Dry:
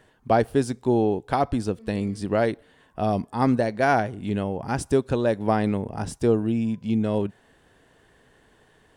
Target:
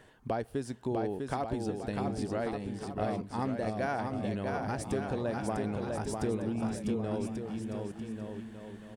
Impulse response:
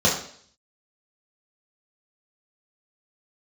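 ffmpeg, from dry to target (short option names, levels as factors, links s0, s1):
-af "acompressor=threshold=0.0178:ratio=3,aecho=1:1:650|1138|1503|1777|1983:0.631|0.398|0.251|0.158|0.1"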